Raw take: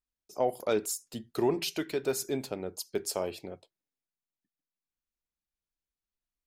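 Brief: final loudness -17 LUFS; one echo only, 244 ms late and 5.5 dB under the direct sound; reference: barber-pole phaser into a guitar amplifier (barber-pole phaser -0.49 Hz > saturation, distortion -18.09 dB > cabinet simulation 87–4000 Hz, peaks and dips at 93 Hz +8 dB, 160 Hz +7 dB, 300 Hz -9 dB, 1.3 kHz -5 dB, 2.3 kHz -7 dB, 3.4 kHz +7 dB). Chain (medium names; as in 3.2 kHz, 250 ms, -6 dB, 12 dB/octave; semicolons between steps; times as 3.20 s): delay 244 ms -5.5 dB; barber-pole phaser -0.49 Hz; saturation -23.5 dBFS; cabinet simulation 87–4000 Hz, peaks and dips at 93 Hz +8 dB, 160 Hz +7 dB, 300 Hz -9 dB, 1.3 kHz -5 dB, 2.3 kHz -7 dB, 3.4 kHz +7 dB; trim +21.5 dB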